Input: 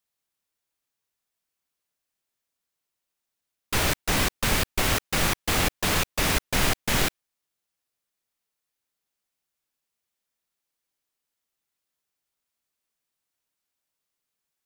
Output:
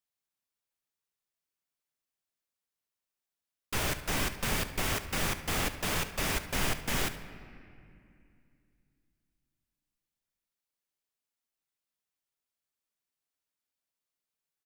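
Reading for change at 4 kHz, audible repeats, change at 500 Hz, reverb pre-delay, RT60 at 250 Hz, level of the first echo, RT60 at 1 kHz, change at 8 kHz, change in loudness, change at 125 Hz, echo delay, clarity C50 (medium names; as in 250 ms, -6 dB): -8.0 dB, 2, -7.0 dB, 5 ms, 3.4 s, -15.5 dB, 2.3 s, -7.5 dB, -7.5 dB, -7.0 dB, 71 ms, 10.5 dB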